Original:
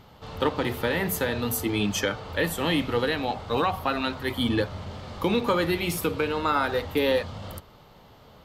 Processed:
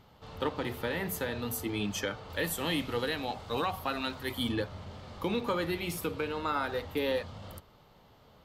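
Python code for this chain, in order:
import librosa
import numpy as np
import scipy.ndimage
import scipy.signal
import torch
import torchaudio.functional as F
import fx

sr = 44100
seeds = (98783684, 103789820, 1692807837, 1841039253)

y = fx.high_shelf(x, sr, hz=4500.0, db=8.0, at=(2.3, 4.52))
y = y * librosa.db_to_amplitude(-7.5)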